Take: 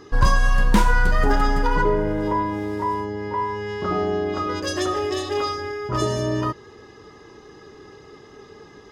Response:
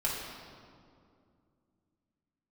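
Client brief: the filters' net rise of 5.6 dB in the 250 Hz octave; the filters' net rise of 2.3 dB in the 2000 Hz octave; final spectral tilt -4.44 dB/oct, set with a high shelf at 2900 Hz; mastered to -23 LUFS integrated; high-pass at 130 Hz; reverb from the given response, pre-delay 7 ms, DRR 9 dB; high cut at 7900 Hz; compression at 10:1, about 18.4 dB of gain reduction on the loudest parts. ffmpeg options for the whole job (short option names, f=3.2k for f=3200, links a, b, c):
-filter_complex "[0:a]highpass=130,lowpass=7.9k,equalizer=f=250:t=o:g=8,equalizer=f=2k:t=o:g=5,highshelf=f=2.9k:g=-5.5,acompressor=threshold=-28dB:ratio=10,asplit=2[a][b];[1:a]atrim=start_sample=2205,adelay=7[c];[b][c]afir=irnorm=-1:irlink=0,volume=-16dB[d];[a][d]amix=inputs=2:normalize=0,volume=9dB"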